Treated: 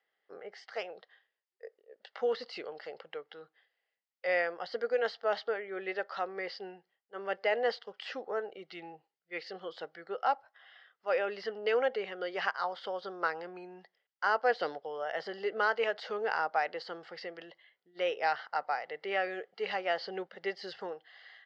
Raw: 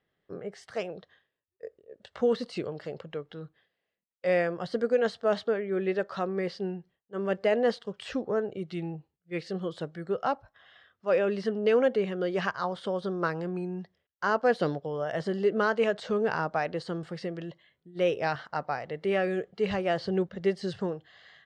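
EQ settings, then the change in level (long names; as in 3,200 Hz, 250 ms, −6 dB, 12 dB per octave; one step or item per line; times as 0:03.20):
loudspeaker in its box 460–6,000 Hz, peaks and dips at 470 Hz +4 dB, 800 Hz +9 dB, 1,400 Hz +6 dB, 2,000 Hz +9 dB, 3,000 Hz +6 dB, 4,800 Hz +9 dB
−7.0 dB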